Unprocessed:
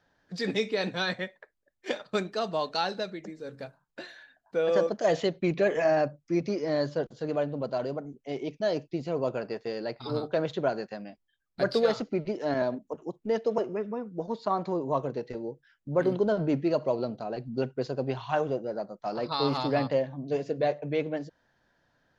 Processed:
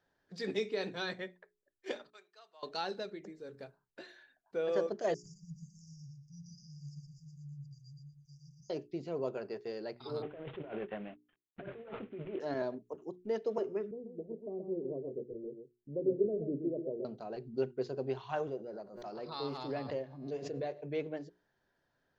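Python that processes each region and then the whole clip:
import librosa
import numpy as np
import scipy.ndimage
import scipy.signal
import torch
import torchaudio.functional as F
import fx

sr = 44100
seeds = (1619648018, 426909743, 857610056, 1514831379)

y = fx.chain(x, sr, fx.bandpass_q(hz=960.0, q=0.75),
    fx.differentiator(), at=(2.1, 2.63))
y = fx.chain(y, sr, fx.brickwall_bandstop(low_hz=170.0, high_hz=4700.0),
    fx.hum_notches(base_hz=60, count=7),
    fx.echo_feedback(ms=117, feedback_pct=23, wet_db=-3.5), at=(5.14, 8.7))
y = fx.chain(y, sr, fx.cvsd(bps=16000),
    fx.over_compress(threshold_db=-36.0, ratio=-1.0), at=(10.22, 12.4))
y = fx.chain(y, sr, fx.steep_lowpass(hz=530.0, slope=36),
    fx.low_shelf(hz=200.0, db=-5.0),
    fx.echo_single(ms=127, db=-7.0), at=(13.91, 17.05))
y = fx.chain(y, sr, fx.comb_fb(f0_hz=120.0, decay_s=2.0, harmonics='all', damping=0.0, mix_pct=40),
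    fx.pre_swell(db_per_s=58.0), at=(18.47, 20.83))
y = fx.peak_eq(y, sr, hz=390.0, db=8.5, octaves=0.27)
y = fx.hum_notches(y, sr, base_hz=60, count=7)
y = y * librosa.db_to_amplitude(-9.0)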